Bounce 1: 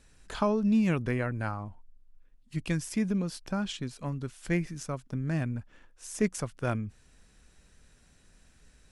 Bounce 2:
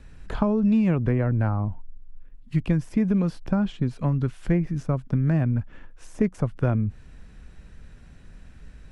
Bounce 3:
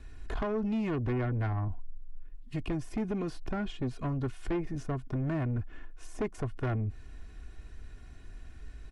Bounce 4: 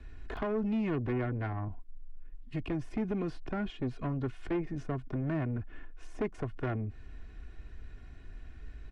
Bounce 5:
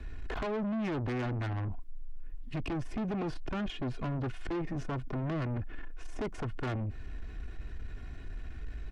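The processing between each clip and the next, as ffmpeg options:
-filter_complex "[0:a]acrossover=split=440|970[a][b][c];[a]acompressor=threshold=-34dB:ratio=4[d];[b]acompressor=threshold=-38dB:ratio=4[e];[c]acompressor=threshold=-49dB:ratio=4[f];[d][e][f]amix=inputs=3:normalize=0,bass=f=250:g=7,treble=f=4k:g=-13,volume=8.5dB"
-af "aecho=1:1:2.8:0.64,asoftclip=type=tanh:threshold=-23dB,volume=-3.5dB"
-filter_complex "[0:a]acrossover=split=150|1100[a][b][c];[a]alimiter=level_in=12dB:limit=-24dB:level=0:latency=1:release=124,volume=-12dB[d];[c]bandpass=f=1.9k:t=q:w=0.73:csg=0[e];[d][b][e]amix=inputs=3:normalize=0"
-af "asoftclip=type=tanh:threshold=-38dB,volume=7dB"

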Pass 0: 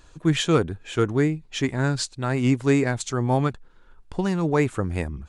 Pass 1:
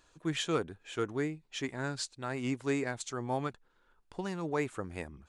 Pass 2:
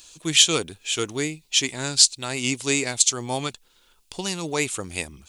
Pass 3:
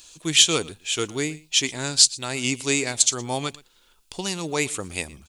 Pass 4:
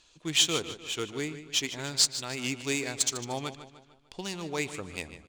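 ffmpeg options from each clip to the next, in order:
-af "lowshelf=f=180:g=-12,volume=-9dB"
-af "aexciter=amount=7.2:drive=3.6:freq=2.4k,volume=5.5dB"
-af "aecho=1:1:117:0.0841"
-af "aecho=1:1:150|300|450|600|750:0.251|0.118|0.0555|0.0261|0.0123,acrusher=bits=4:mode=log:mix=0:aa=0.000001,adynamicsmooth=sensitivity=2.5:basefreq=4.2k,volume=-7dB"

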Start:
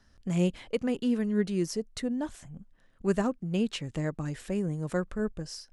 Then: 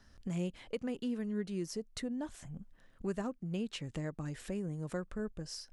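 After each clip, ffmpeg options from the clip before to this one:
-af "acompressor=threshold=-43dB:ratio=2,volume=1dB"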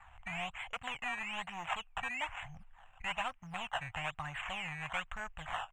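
-af "acrusher=samples=14:mix=1:aa=0.000001:lfo=1:lforange=14:lforate=1.1,asoftclip=type=hard:threshold=-34.5dB,firequalizer=gain_entry='entry(100,0);entry(210,-18);entry(390,-24);entry(740,11);entry(1400,9);entry(2800,14);entry(4700,-23);entry(7400,3);entry(11000,-22)':delay=0.05:min_phase=1,volume=1.5dB"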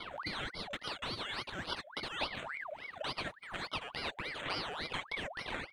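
-af "acompressor=threshold=-53dB:ratio=2,aphaser=in_gain=1:out_gain=1:delay=3.4:decay=0.44:speed=0.44:type=sinusoidal,aeval=exprs='val(0)*sin(2*PI*1400*n/s+1400*0.6/3.5*sin(2*PI*3.5*n/s))':c=same,volume=10.5dB"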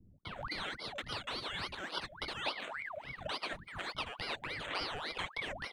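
-filter_complex "[0:a]acrossover=split=220[a][b];[b]adelay=250[c];[a][c]amix=inputs=2:normalize=0"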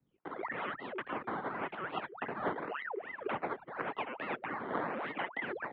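-filter_complex "[0:a]acrusher=samples=9:mix=1:aa=0.000001:lfo=1:lforange=14.4:lforate=0.9,highpass=f=280:t=q:w=0.5412,highpass=f=280:t=q:w=1.307,lowpass=f=3.3k:t=q:w=0.5176,lowpass=f=3.3k:t=q:w=0.7071,lowpass=f=3.3k:t=q:w=1.932,afreqshift=-200,acrossover=split=150 2200:gain=0.1 1 0.2[a][b][c];[a][b][c]amix=inputs=3:normalize=0,volume=5dB"

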